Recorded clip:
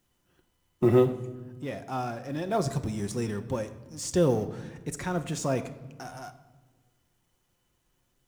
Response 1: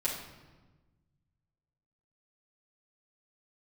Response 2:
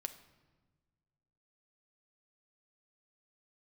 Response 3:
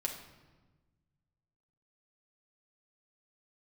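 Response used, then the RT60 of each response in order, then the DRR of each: 2; 1.3 s, 1.3 s, 1.3 s; -9.0 dB, 7.0 dB, -1.0 dB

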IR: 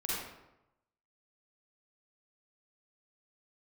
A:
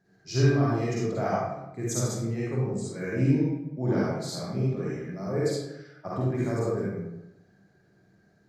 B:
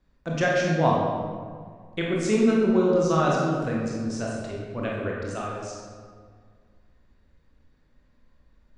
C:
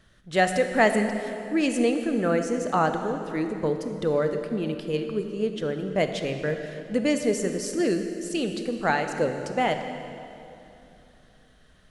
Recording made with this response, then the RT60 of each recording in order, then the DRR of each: A; 0.90 s, 1.9 s, 2.9 s; -7.5 dB, -4.0 dB, 6.5 dB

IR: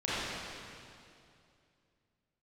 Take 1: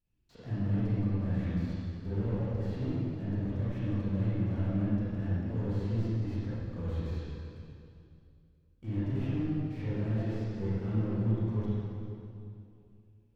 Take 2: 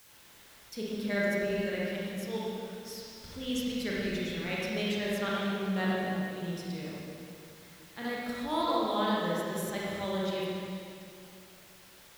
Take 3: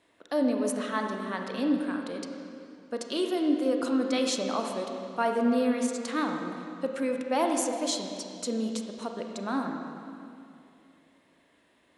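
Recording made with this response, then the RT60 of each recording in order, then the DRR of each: 1; 2.5 s, 2.5 s, 2.5 s; -11.5 dB, -6.5 dB, 3.0 dB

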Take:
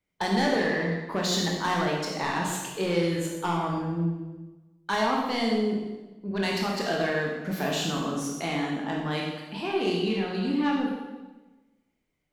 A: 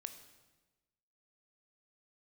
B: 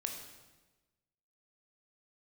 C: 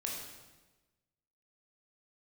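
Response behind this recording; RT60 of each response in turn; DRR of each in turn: C; 1.2 s, 1.2 s, 1.2 s; 8.0 dB, 2.5 dB, -2.0 dB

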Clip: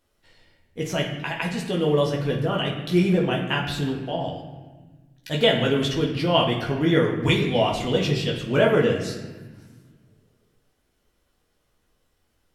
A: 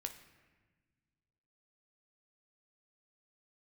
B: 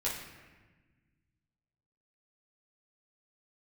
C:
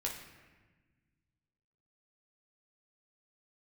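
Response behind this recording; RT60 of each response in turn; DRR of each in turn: C; 1.3 s, 1.3 s, 1.3 s; 5.0 dB, -7.5 dB, -2.5 dB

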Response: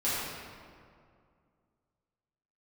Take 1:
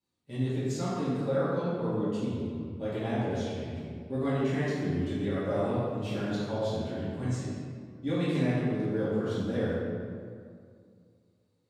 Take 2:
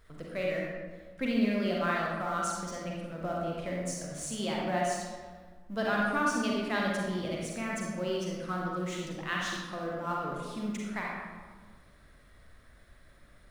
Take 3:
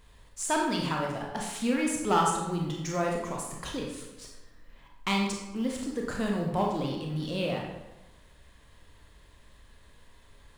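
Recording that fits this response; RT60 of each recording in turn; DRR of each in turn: 1; 2.2 s, 1.5 s, 1.0 s; -11.5 dB, -3.0 dB, -1.0 dB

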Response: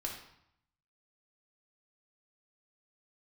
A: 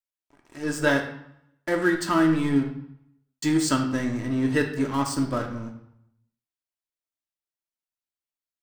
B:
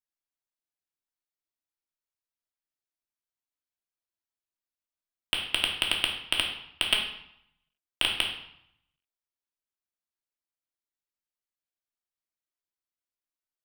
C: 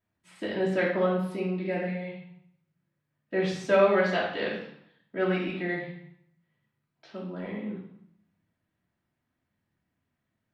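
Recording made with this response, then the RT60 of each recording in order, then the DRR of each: B; 0.75 s, 0.75 s, 0.75 s; 2.5 dB, -2.0 dB, -9.0 dB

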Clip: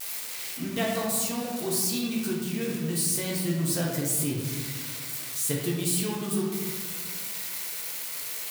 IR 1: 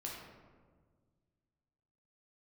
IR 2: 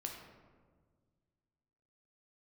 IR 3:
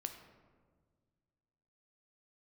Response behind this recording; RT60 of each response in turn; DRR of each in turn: 1; 1.6 s, 1.6 s, 1.6 s; -3.5 dB, 1.0 dB, 6.0 dB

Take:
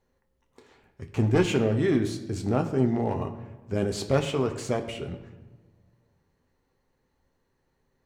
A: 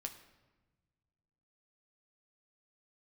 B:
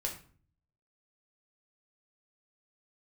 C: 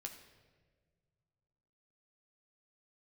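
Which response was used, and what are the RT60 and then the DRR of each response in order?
A; 1.2 s, 0.45 s, 1.6 s; 4.5 dB, 0.0 dB, 3.5 dB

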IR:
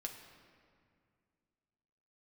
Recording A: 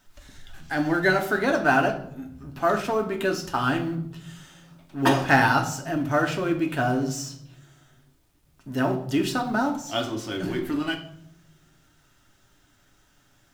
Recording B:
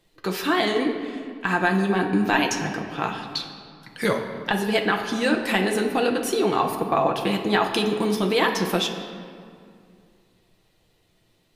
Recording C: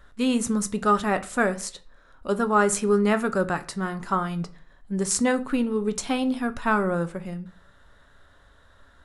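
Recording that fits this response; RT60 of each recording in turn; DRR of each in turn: B; 0.70 s, 2.2 s, 0.40 s; 2.5 dB, 1.5 dB, 10.0 dB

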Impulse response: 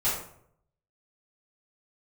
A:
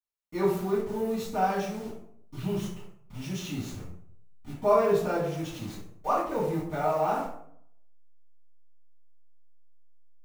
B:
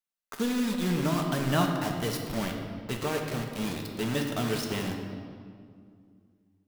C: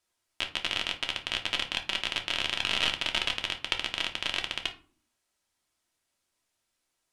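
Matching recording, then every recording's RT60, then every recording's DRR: A; 0.65 s, 2.2 s, 0.45 s; -12.0 dB, 1.0 dB, 3.0 dB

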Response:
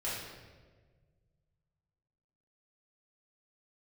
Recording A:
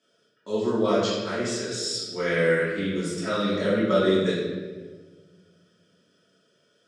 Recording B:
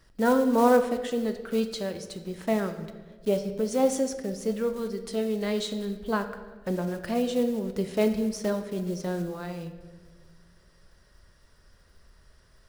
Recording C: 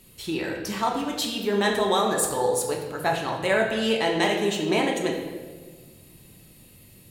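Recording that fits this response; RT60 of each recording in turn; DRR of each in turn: A; 1.5 s, 1.5 s, 1.5 s; -10.0 dB, 7.5 dB, -0.5 dB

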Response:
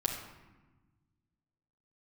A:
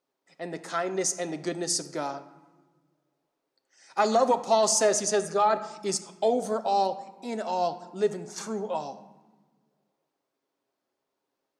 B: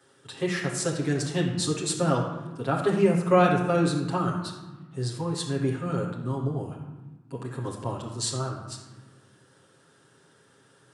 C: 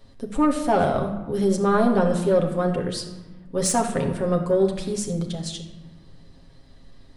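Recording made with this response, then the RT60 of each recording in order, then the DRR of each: B; 1.2 s, 1.2 s, 1.2 s; 8.5 dB, -4.5 dB, 1.5 dB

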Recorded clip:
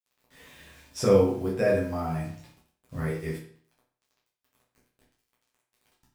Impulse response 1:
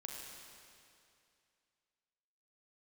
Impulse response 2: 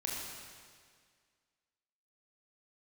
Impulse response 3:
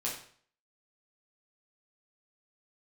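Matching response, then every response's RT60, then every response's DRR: 3; 2.5 s, 1.9 s, 0.50 s; -1.0 dB, -3.5 dB, -6.0 dB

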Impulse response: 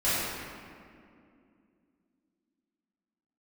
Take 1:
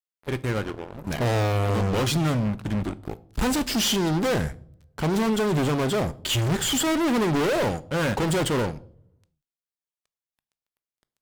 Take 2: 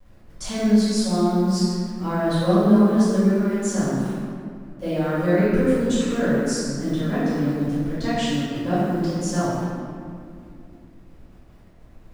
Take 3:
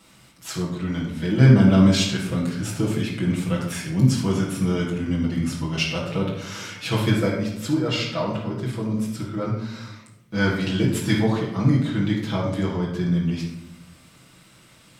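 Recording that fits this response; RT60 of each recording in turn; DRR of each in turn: 2; no single decay rate, 2.4 s, 0.90 s; 15.0 dB, -14.5 dB, -6.5 dB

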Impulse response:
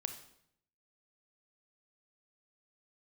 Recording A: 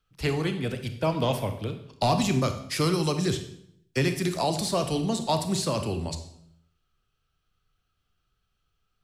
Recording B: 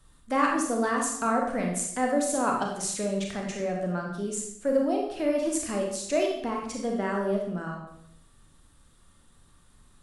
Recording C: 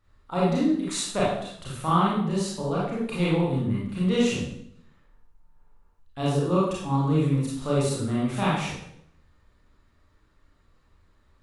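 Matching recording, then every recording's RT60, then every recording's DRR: A; 0.70 s, 0.70 s, 0.70 s; 7.0 dB, -0.5 dB, -7.5 dB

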